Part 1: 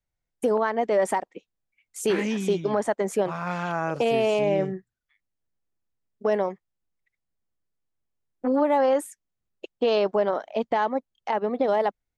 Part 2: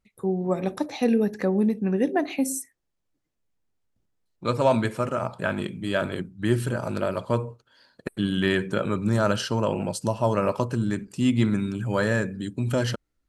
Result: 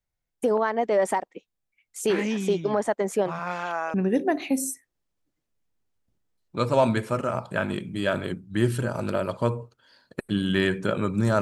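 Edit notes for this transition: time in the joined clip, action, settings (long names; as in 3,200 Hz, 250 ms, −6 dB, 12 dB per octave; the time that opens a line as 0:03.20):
part 1
0:03.38–0:03.94: high-pass filter 180 Hz → 740 Hz
0:03.94: continue with part 2 from 0:01.82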